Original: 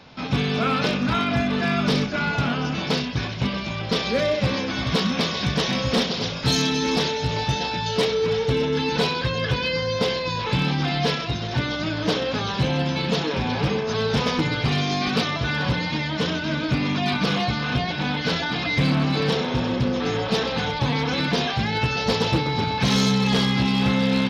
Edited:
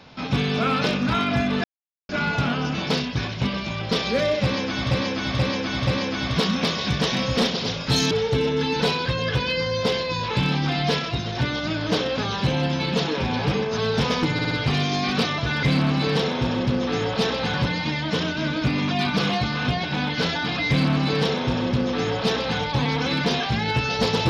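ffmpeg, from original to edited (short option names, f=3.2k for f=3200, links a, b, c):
-filter_complex "[0:a]asplit=12[a][b][c][d][e][f][g][h][i][j][k][l];[a]atrim=end=1.64,asetpts=PTS-STARTPTS,afade=t=out:st=1.636:d=0.004:c=hsin[m];[b]atrim=start=1.64:end=2.09,asetpts=PTS-STARTPTS,volume=0[n];[c]atrim=start=2.09:end=4.912,asetpts=PTS-STARTPTS,afade=t=in:d=0.004:c=hsin[o];[d]atrim=start=4.428:end=4.912[p];[e]atrim=start=4.428:end=4.912[q];[f]atrim=start=4.428:end=6.672[r];[g]atrim=start=8.268:end=14.552[s];[h]atrim=start=14.488:end=14.552[t];[i]atrim=start=14.488:end=14.552[u];[j]atrim=start=14.488:end=15.612[v];[k]atrim=start=18.758:end=20.672[w];[l]atrim=start=15.608[x];[m][n][o]concat=n=3:v=0:a=1[y];[y][p]acrossfade=d=0.004:c1=hsin:c2=hsin[z];[z][q]acrossfade=d=0.004:c1=hsin:c2=hsin[aa];[aa][r]acrossfade=d=0.004:c1=hsin:c2=hsin[ab];[ab][s]acrossfade=d=0.004:c1=hsin:c2=hsin[ac];[ac][t]acrossfade=d=0.004:c1=hsin:c2=hsin[ad];[ad][u]acrossfade=d=0.004:c1=hsin:c2=hsin[ae];[ae][v]acrossfade=d=0.004:c1=hsin:c2=hsin[af];[af][w]acrossfade=d=0.004:c1=hsin:c2=hsin[ag];[ag][x]acrossfade=d=0.004:c1=hsin:c2=hsin"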